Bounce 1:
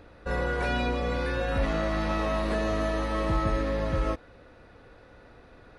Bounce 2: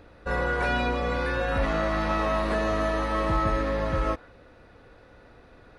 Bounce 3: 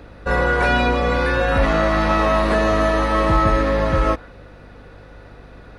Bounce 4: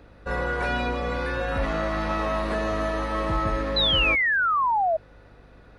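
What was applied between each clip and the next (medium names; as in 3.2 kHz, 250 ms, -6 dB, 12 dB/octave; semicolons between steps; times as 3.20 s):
dynamic bell 1.2 kHz, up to +5 dB, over -44 dBFS, Q 0.76
hum 50 Hz, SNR 26 dB; trim +8.5 dB
painted sound fall, 3.76–4.97 s, 620–4100 Hz -13 dBFS; trim -9 dB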